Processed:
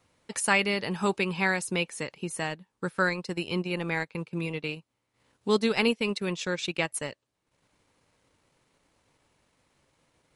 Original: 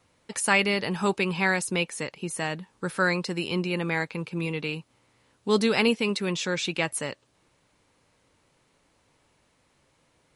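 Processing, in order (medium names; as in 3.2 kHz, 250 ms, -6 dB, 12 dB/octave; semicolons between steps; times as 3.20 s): transient shaper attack +2 dB, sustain -2 dB, from 2.49 s sustain -12 dB; trim -2.5 dB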